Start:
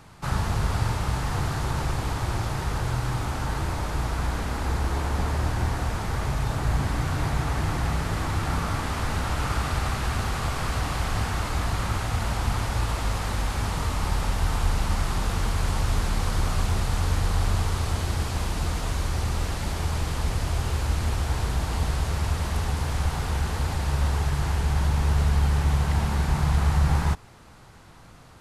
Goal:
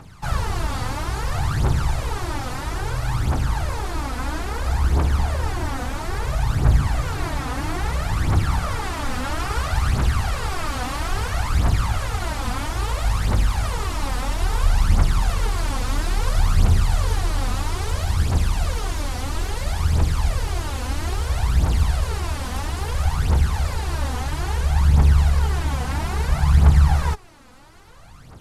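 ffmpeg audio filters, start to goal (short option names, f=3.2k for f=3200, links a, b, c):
-af "aphaser=in_gain=1:out_gain=1:delay=4.1:decay=0.66:speed=0.6:type=triangular"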